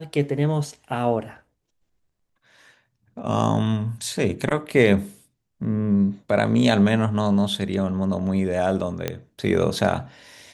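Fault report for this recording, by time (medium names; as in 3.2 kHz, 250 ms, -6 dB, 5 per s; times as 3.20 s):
9.08 s: pop -10 dBFS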